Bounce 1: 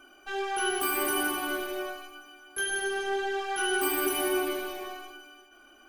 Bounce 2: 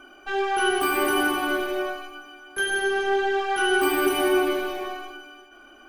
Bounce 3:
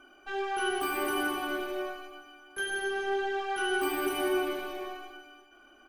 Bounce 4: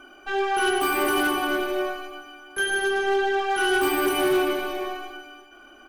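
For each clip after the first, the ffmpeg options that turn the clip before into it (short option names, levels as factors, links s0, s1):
-af "highshelf=f=4800:g=-11,volume=2.37"
-af "aecho=1:1:247:0.141,volume=0.398"
-af "volume=18.8,asoftclip=hard,volume=0.0531,volume=2.66"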